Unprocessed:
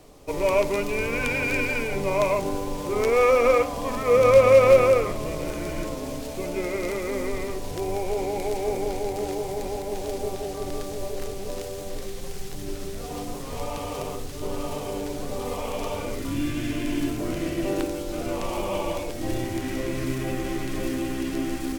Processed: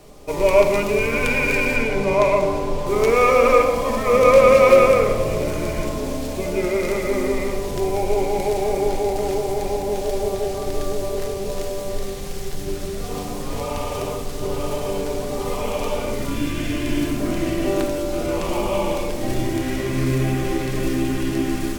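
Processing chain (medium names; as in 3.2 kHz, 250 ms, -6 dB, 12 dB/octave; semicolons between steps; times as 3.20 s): 1.75–2.86 s: treble shelf 11 kHz -> 6.3 kHz -11 dB; reverberation RT60 1.4 s, pre-delay 5 ms, DRR 3 dB; trim +3.5 dB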